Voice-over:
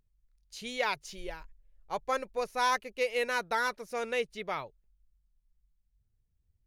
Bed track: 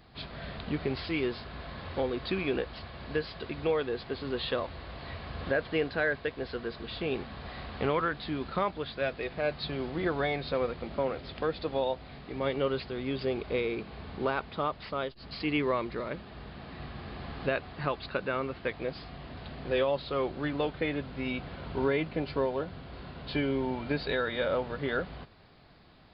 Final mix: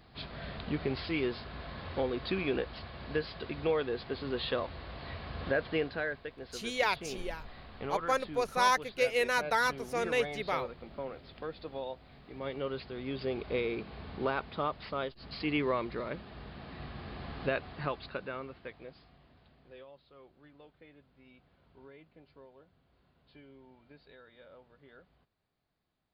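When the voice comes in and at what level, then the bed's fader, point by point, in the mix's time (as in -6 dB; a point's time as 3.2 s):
6.00 s, +1.5 dB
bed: 5.73 s -1.5 dB
6.27 s -9.5 dB
12.12 s -9.5 dB
13.58 s -2 dB
17.74 s -2 dB
19.98 s -26 dB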